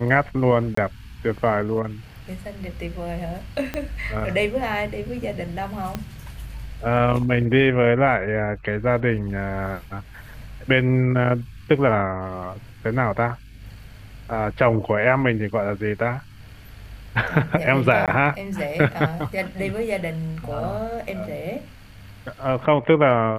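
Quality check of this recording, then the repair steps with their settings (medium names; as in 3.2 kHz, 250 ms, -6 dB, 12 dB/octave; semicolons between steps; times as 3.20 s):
0.75–0.77 s: dropout 24 ms
3.74 s: pop -13 dBFS
5.95 s: pop -13 dBFS
18.06–18.08 s: dropout 17 ms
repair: de-click; interpolate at 0.75 s, 24 ms; interpolate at 18.06 s, 17 ms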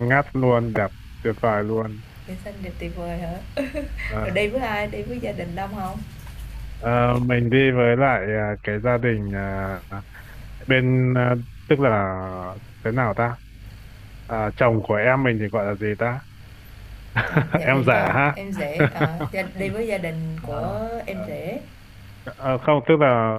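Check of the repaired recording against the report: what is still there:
3.74 s: pop
5.95 s: pop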